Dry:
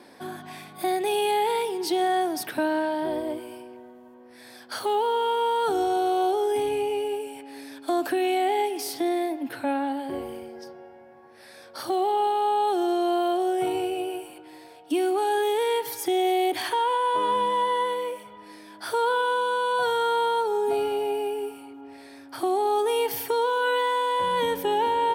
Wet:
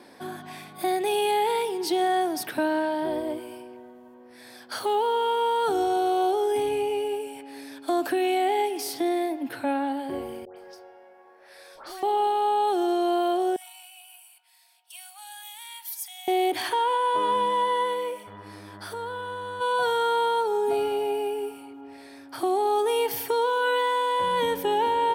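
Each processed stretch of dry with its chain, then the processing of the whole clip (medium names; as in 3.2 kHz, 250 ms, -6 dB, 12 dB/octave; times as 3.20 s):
10.45–12.03 s: high-pass 370 Hz 24 dB/octave + valve stage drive 38 dB, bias 0.2 + phase dispersion highs, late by 116 ms, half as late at 1.5 kHz
13.56–16.28 s: rippled Chebyshev high-pass 650 Hz, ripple 3 dB + differentiator
18.26–19.60 s: compression 2.5:1, threshold -37 dBFS + mains buzz 100 Hz, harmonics 20, -47 dBFS
whole clip: none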